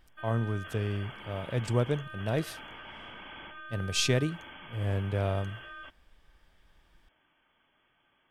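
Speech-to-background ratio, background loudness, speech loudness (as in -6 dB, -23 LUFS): 13.0 dB, -45.0 LUFS, -32.0 LUFS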